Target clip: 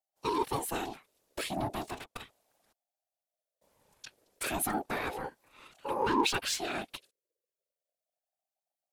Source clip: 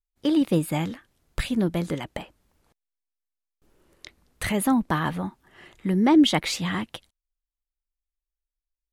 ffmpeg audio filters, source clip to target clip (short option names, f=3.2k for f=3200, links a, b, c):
-filter_complex "[0:a]highshelf=f=2.8k:g=9.5,asettb=1/sr,asplit=3[a][b][c];[a]atrim=end=1.804[d];[b]atrim=start=1.8:end=2.2,asetpts=PTS-STARTPTS,afade=t=in:d=0.004:c=qsin,afade=t=out:st=0.396:d=0.004:c=qsin,aeval=exprs='0.237*(cos(1*acos(clip(val(0)/0.237,-1,1)))-cos(1*PI/2))+0.0266*(cos(7*acos(clip(val(0)/0.237,-1,1)))-cos(7*PI/2))':c=same[e];[c]atrim=start=2.196[f];[d][e]acrossfade=d=0.004:c1=hsin:c2=qsin[g];[g][f]acrossfade=d=0.004:c1=qsin:c2=hsin,afftfilt=real='hypot(re,im)*cos(2*PI*random(0))':imag='hypot(re,im)*sin(2*PI*random(1))':win_size=512:overlap=0.75,asplit=2[h][i];[i]volume=32.5dB,asoftclip=hard,volume=-32.5dB,volume=-3.5dB[j];[h][j]amix=inputs=2:normalize=0,aeval=exprs='val(0)*sin(2*PI*590*n/s+590*0.2/0.35*sin(2*PI*0.35*n/s))':c=same,volume=-4dB"